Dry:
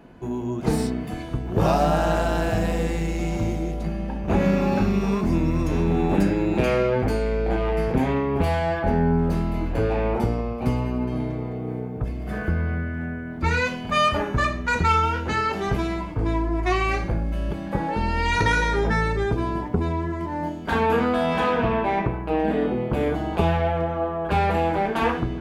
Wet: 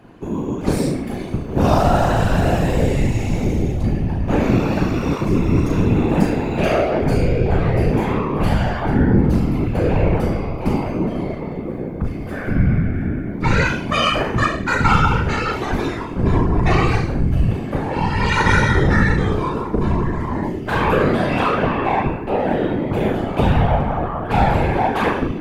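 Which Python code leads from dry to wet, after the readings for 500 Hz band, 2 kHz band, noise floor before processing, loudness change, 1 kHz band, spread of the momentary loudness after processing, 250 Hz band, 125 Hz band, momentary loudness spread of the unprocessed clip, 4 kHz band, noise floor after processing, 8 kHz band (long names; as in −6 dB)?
+3.0 dB, +4.5 dB, −32 dBFS, +5.0 dB, +3.5 dB, 8 LU, +5.0 dB, +7.0 dB, 8 LU, +5.0 dB, −27 dBFS, +4.5 dB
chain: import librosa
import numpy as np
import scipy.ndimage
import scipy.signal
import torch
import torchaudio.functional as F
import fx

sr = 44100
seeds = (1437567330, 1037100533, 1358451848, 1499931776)

y = fx.room_flutter(x, sr, wall_m=6.3, rt60_s=0.47)
y = fx.whisperise(y, sr, seeds[0])
y = F.gain(torch.from_numpy(y), 2.5).numpy()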